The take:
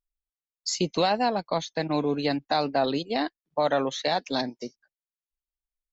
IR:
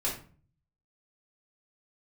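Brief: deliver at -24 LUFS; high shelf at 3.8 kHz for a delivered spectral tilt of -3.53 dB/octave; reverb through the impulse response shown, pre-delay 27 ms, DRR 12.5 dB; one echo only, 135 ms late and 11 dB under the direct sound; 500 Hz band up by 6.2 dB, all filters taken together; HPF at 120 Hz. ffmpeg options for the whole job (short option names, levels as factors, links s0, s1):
-filter_complex "[0:a]highpass=120,equalizer=f=500:t=o:g=7.5,highshelf=f=3800:g=8,aecho=1:1:135:0.282,asplit=2[s0][s1];[1:a]atrim=start_sample=2205,adelay=27[s2];[s1][s2]afir=irnorm=-1:irlink=0,volume=0.119[s3];[s0][s3]amix=inputs=2:normalize=0,volume=0.794"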